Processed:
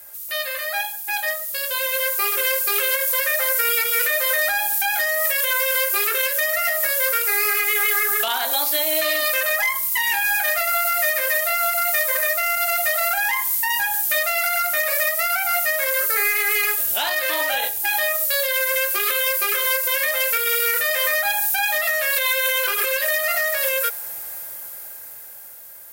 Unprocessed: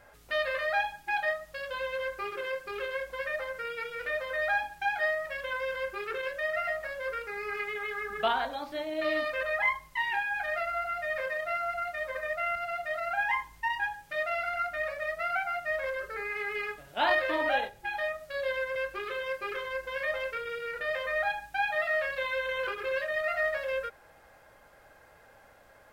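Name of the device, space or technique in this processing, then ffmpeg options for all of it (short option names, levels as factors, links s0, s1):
FM broadcast chain: -filter_complex "[0:a]highpass=f=65:w=0.5412,highpass=f=65:w=1.3066,dynaudnorm=f=320:g=13:m=4.47,acrossover=split=120|400[s0][s1][s2];[s0]acompressor=threshold=0.00112:ratio=4[s3];[s1]acompressor=threshold=0.00501:ratio=4[s4];[s2]acompressor=threshold=0.126:ratio=4[s5];[s3][s4][s5]amix=inputs=3:normalize=0,aemphasis=mode=production:type=75fm,alimiter=limit=0.188:level=0:latency=1:release=132,asoftclip=type=hard:threshold=0.126,lowpass=f=15000:w=0.5412,lowpass=f=15000:w=1.3066,aemphasis=mode=production:type=75fm"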